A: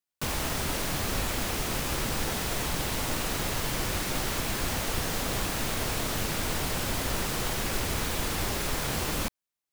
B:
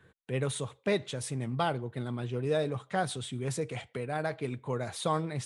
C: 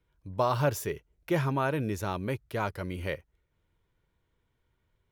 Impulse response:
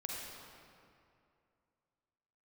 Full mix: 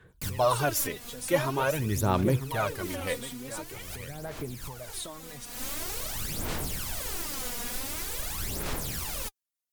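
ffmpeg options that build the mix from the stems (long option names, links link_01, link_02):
-filter_complex "[0:a]volume=-10.5dB[link_01];[1:a]acompressor=threshold=-36dB:ratio=6,volume=-4.5dB,asplit=2[link_02][link_03];[2:a]volume=-0.5dB,asplit=2[link_04][link_05];[link_05]volume=-12dB[link_06];[link_03]apad=whole_len=428915[link_07];[link_01][link_07]sidechaincompress=threshold=-55dB:ratio=5:attack=16:release=225[link_08];[link_06]aecho=0:1:943:1[link_09];[link_08][link_02][link_04][link_09]amix=inputs=4:normalize=0,aemphasis=mode=production:type=cd,aphaser=in_gain=1:out_gain=1:delay=4.2:decay=0.66:speed=0.46:type=sinusoidal"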